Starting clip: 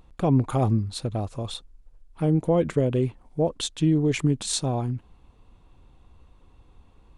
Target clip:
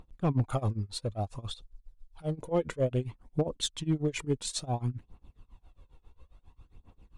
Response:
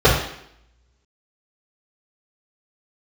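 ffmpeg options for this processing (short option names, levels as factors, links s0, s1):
-filter_complex "[0:a]tremolo=f=7.4:d=0.94,aphaser=in_gain=1:out_gain=1:delay=2.4:decay=0.49:speed=0.58:type=triangular,asoftclip=type=hard:threshold=0.158,asettb=1/sr,asplit=3[s0][s1][s2];[s0]atrim=end=1.514[s3];[s1]atrim=start=1.51:end=2.39,asetpts=PTS-STARTPTS,afade=t=in:d=0.004:c=qsin,afade=t=out:st=0.876:d=0.004:c=qsin,equalizer=f=250:t=o:w=1:g=-9,equalizer=f=2000:t=o:w=1:g=-4,equalizer=f=4000:t=o:w=1:g=6[s4];[s2]atrim=start=2.386[s5];[s3][s4]acrossfade=d=0.004:c1=hsin:c2=qsin[s6];[s6][s5]acrossfade=d=0.004:c1=qsin:c2=hsin,volume=0.708"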